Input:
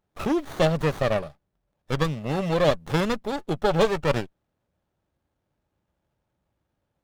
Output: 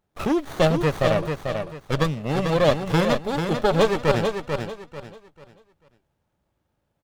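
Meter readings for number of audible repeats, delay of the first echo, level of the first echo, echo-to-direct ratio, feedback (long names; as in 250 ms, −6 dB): 3, 442 ms, −6.0 dB, −5.5 dB, 29%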